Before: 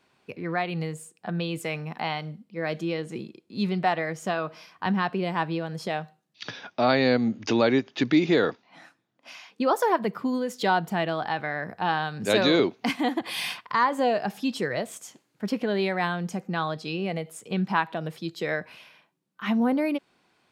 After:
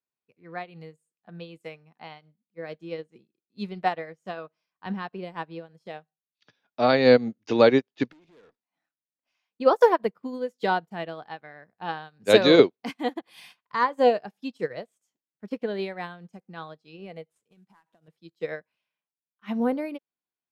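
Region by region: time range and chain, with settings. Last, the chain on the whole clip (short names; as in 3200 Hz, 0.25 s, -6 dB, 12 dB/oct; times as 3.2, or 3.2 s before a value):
8.12–9.35 compressor, threshold -24 dBFS + tube stage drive 32 dB, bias 0.4
17.29–18.08 CVSD 64 kbps + notch 4500 Hz, Q 21 + compressor 4:1, threshold -33 dBFS
whole clip: dynamic EQ 480 Hz, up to +6 dB, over -39 dBFS, Q 3.2; upward expander 2.5:1, over -41 dBFS; gain +5.5 dB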